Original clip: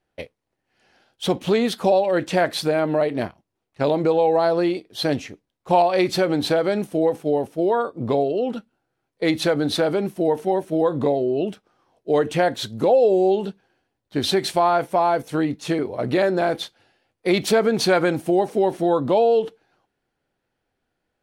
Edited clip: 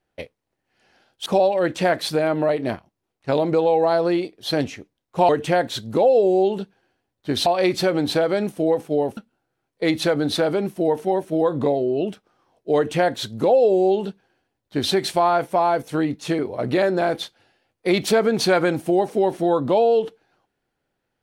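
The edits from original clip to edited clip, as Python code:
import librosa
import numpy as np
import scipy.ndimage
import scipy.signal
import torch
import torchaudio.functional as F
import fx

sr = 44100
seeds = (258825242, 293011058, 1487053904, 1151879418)

y = fx.edit(x, sr, fx.cut(start_s=1.26, length_s=0.52),
    fx.cut(start_s=7.52, length_s=1.05),
    fx.duplicate(start_s=12.16, length_s=2.17, to_s=5.81), tone=tone)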